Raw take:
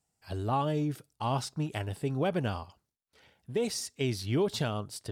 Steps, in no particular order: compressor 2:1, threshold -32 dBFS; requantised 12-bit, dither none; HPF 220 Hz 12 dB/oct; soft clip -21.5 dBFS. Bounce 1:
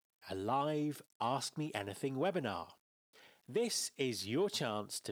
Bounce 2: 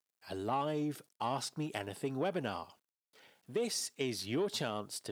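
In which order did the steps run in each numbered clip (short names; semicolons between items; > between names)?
compressor > soft clip > HPF > requantised; soft clip > requantised > HPF > compressor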